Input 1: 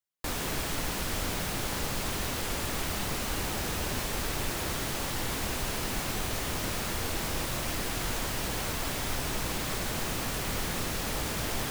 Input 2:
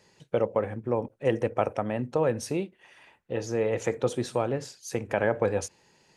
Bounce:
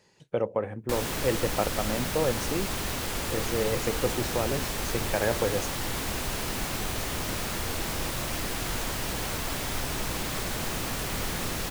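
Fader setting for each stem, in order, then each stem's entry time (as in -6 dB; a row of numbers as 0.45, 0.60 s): +1.0, -2.0 dB; 0.65, 0.00 s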